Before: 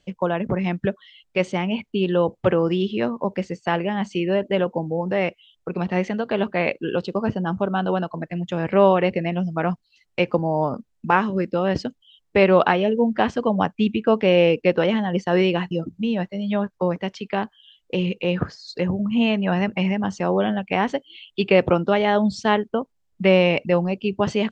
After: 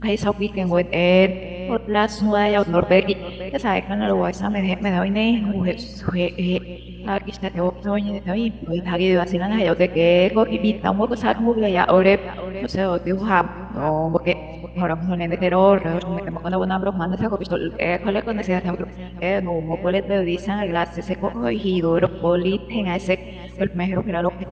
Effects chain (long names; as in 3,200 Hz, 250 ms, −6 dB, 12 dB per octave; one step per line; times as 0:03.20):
played backwards from end to start
on a send: single-tap delay 491 ms −17.5 dB
on the sum: mains hum 60 Hz, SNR 17 dB
four-comb reverb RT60 2.2 s, combs from 33 ms, DRR 16.5 dB
level +1 dB